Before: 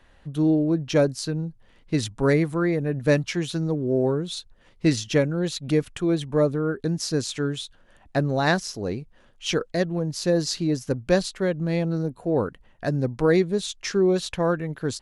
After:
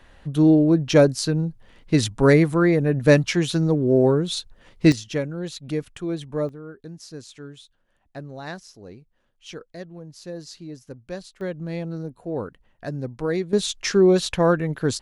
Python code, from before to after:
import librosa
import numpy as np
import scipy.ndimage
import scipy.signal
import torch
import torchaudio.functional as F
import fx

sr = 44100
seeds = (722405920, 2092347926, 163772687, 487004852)

y = fx.gain(x, sr, db=fx.steps((0.0, 5.0), (4.92, -5.0), (6.49, -13.5), (11.41, -5.5), (13.53, 4.5)))